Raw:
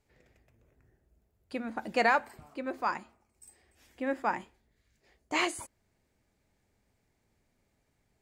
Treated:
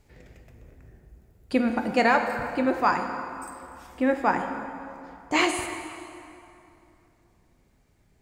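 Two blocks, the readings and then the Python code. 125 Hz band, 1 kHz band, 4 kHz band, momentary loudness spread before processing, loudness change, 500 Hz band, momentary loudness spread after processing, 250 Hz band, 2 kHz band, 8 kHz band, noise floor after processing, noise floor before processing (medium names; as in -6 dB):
+12.5 dB, +7.0 dB, +6.0 dB, 15 LU, +6.5 dB, +8.0 dB, 19 LU, +12.0 dB, +6.0 dB, +6.5 dB, -63 dBFS, -76 dBFS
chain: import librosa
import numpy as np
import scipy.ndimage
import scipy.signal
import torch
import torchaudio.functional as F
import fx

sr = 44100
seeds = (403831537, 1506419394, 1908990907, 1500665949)

y = fx.low_shelf(x, sr, hz=240.0, db=6.5)
y = fx.rider(y, sr, range_db=4, speed_s=0.5)
y = fx.rev_plate(y, sr, seeds[0], rt60_s=2.8, hf_ratio=0.7, predelay_ms=0, drr_db=5.0)
y = y * 10.0 ** (6.5 / 20.0)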